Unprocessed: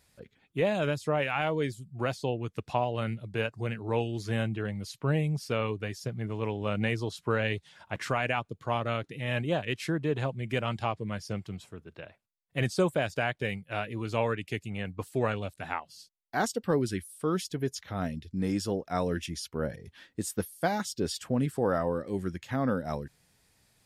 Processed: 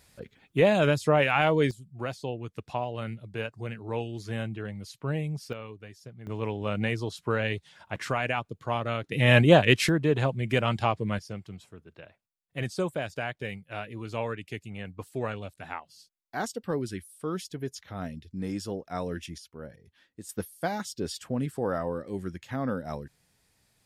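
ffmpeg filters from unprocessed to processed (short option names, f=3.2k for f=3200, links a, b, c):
-af "asetnsamples=n=441:p=0,asendcmd='1.71 volume volume -3dB;5.53 volume volume -11dB;6.27 volume volume 0.5dB;9.12 volume volume 12dB;9.89 volume volume 5dB;11.19 volume volume -3.5dB;19.38 volume volume -10.5dB;20.29 volume volume -2dB',volume=6dB"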